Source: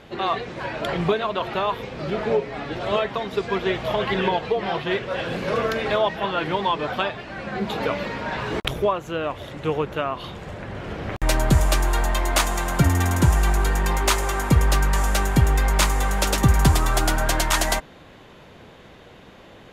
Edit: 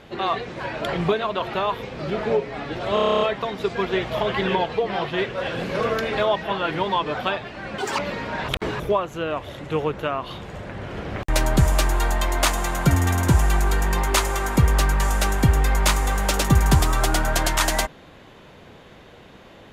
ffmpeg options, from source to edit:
-filter_complex "[0:a]asplit=14[a][b][c][d][e][f][g][h][i][j][k][l][m][n];[a]atrim=end=2.972[o];[b]atrim=start=2.938:end=2.972[p];[c]atrim=start=2.938:end=2.972[q];[d]atrim=start=2.938:end=2.972[r];[e]atrim=start=2.938:end=2.972[s];[f]atrim=start=2.938:end=2.972[t];[g]atrim=start=2.938:end=2.972[u];[h]atrim=start=2.938:end=2.972[v];[i]atrim=start=2.938:end=2.972[w];[j]atrim=start=2.938:end=7.514[x];[k]atrim=start=7.51:end=7.92,asetpts=PTS-STARTPTS,asetrate=87318,aresample=44100[y];[l]atrim=start=7.916:end=8.422[z];[m]atrim=start=8.418:end=8.732,asetpts=PTS-STARTPTS,areverse[aa];[n]atrim=start=8.728[ab];[o][p]acrossfade=d=0.004:c1=hsin:c2=hsin[ac];[ac][q]acrossfade=d=0.004:c1=hsin:c2=hsin[ad];[ad][r]acrossfade=d=0.004:c1=hsin:c2=hsin[ae];[ae][s]acrossfade=d=0.004:c1=hsin:c2=hsin[af];[af][t]acrossfade=d=0.004:c1=hsin:c2=hsin[ag];[ag][u]acrossfade=d=0.004:c1=hsin:c2=hsin[ah];[ah][v]acrossfade=d=0.004:c1=hsin:c2=hsin[ai];[ai][w]acrossfade=d=0.004:c1=hsin:c2=hsin[aj];[aj][x]acrossfade=d=0.004:c1=hsin:c2=hsin[ak];[ak][y]acrossfade=d=0.004:c1=hsin:c2=hsin[al];[al][z]acrossfade=d=0.004:c1=hsin:c2=hsin[am];[am][aa]acrossfade=d=0.004:c1=hsin:c2=hsin[an];[an][ab]acrossfade=d=0.004:c1=hsin:c2=hsin"

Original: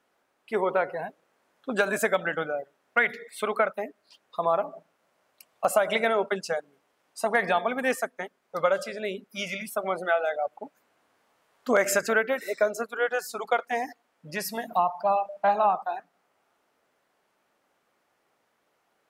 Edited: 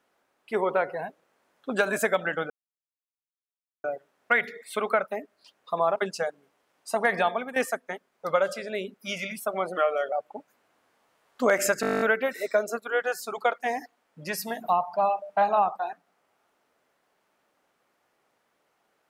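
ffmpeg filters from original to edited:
-filter_complex "[0:a]asplit=16[a][b][c][d][e][f][g][h][i][j][k][l][m][n][o][p];[a]atrim=end=2.5,asetpts=PTS-STARTPTS,afade=t=out:st=2.496:d=0.004:c=hsin,apad=pad_dur=1.34[q];[b]atrim=start=2.5:end=4.622,asetpts=PTS-STARTPTS,afade=t=in:d=0.004:c=hsin[r];[c]atrim=start=6.258:end=7.86,asetpts=PTS-STARTPTS,afade=t=out:st=1.332:d=0.27:silence=0.237137[s];[d]atrim=start=7.86:end=10.074,asetpts=PTS-STARTPTS,afade=t=in:d=0.004:c=hsin:silence=0.237137[t];[e]atrim=start=10.07:end=10.39,asetpts=PTS-STARTPTS,asetrate=40131,aresample=44100[u];[f]atrim=start=10.386:end=12.102[v];[g]atrim=start=12.078:end=12.102[w];[h]atrim=start=12.078:end=12.102[x];[i]atrim=start=12.078:end=12.102[y];[j]atrim=start=12.078:end=12.102[z];[k]atrim=start=12.078:end=12.102[aa];[l]atrim=start=12.078:end=12.102[ab];[m]atrim=start=12.078:end=12.102[ac];[n]atrim=start=12.078:end=12.102[ad];[o]atrim=start=12.078:end=12.102[ae];[p]atrim=start=12.078[af];[q][r]concat=n=2:v=0:a=1[ag];[s][t]concat=n=2:v=0:a=1[ah];[ag][ah]acrossfade=d=0.004:c1=hsin:c2=hsin[ai];[ai][u]acrossfade=d=0.004:c1=hsin:c2=hsin[aj];[aj][v]acrossfade=d=0.004:c1=hsin:c2=hsin[ak];[ak][w]acrossfade=d=0.004:c1=hsin:c2=hsin[al];[al][x]acrossfade=d=0.004:c1=hsin:c2=hsin[am];[am][y]acrossfade=d=0.004:c1=hsin:c2=hsin[an];[an][z]acrossfade=d=0.004:c1=hsin:c2=hsin[ao];[ao][aa]acrossfade=d=0.004:c1=hsin:c2=hsin[ap];[ap][ab]acrossfade=d=0.004:c1=hsin:c2=hsin[aq];[aq][ac]acrossfade=d=0.004:c1=hsin:c2=hsin[ar];[ar][ad]acrossfade=d=0.004:c1=hsin:c2=hsin[as];[as][ae]acrossfade=d=0.004:c1=hsin:c2=hsin[at];[at][af]acrossfade=d=0.004:c1=hsin:c2=hsin"

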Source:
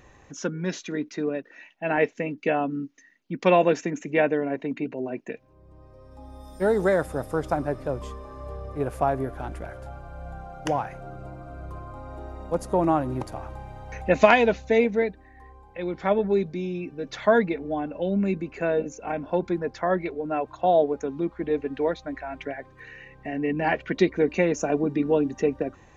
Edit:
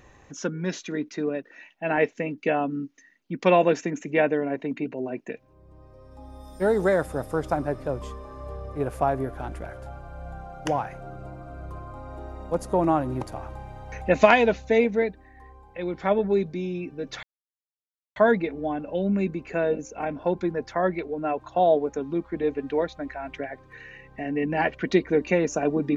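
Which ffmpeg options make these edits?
-filter_complex "[0:a]asplit=2[a][b];[a]atrim=end=17.23,asetpts=PTS-STARTPTS,afade=t=out:st=17.226:d=0.004:c=hsin,apad=pad_dur=0.93[c];[b]atrim=start=17.23,asetpts=PTS-STARTPTS,afade=t=in:d=0.004:c=hsin[d];[c][d]concat=n=2:v=0:a=1"

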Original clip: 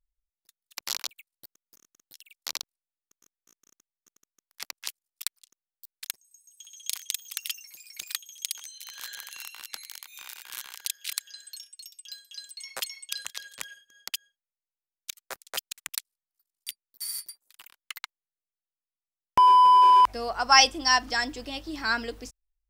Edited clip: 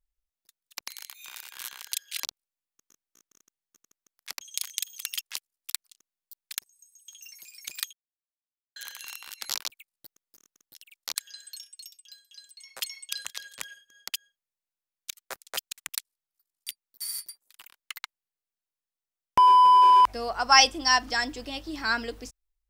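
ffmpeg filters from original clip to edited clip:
-filter_complex "[0:a]asplit=12[a][b][c][d][e][f][g][h][i][j][k][l];[a]atrim=end=0.882[m];[b]atrim=start=9.808:end=11.162[n];[c]atrim=start=2.548:end=4.732[o];[d]atrim=start=6.728:end=7.532[p];[e]atrim=start=4.728:end=6.732[q];[f]atrim=start=7.528:end=8.25,asetpts=PTS-STARTPTS,afade=t=out:st=0.718:d=0.004:c=hsin[r];[g]atrim=start=8.25:end=9.08,asetpts=PTS-STARTPTS,volume=0[s];[h]atrim=start=9.08:end=9.812,asetpts=PTS-STARTPTS,afade=t=in:d=0.004:c=hsin[t];[i]atrim=start=0.878:end=2.552[u];[j]atrim=start=11.158:end=11.972[v];[k]atrim=start=11.968:end=12.812,asetpts=PTS-STARTPTS,volume=-7.5dB[w];[l]atrim=start=12.808[x];[m][n]acrossfade=d=0.004:c1=hsin:c2=hsin[y];[y][o]acrossfade=d=0.004:c1=hsin:c2=hsin[z];[z][p]acrossfade=d=0.004:c1=hsin:c2=hsin[aa];[aa][q]acrossfade=d=0.004:c1=hsin:c2=hsin[ab];[r][s][t]concat=n=3:v=0:a=1[ac];[ab][ac]acrossfade=d=0.004:c1=hsin:c2=hsin[ad];[ad][u]acrossfade=d=0.004:c1=hsin:c2=hsin[ae];[ae][v]acrossfade=d=0.004:c1=hsin:c2=hsin[af];[af][w]acrossfade=d=0.004:c1=hsin:c2=hsin[ag];[ag][x]acrossfade=d=0.004:c1=hsin:c2=hsin"

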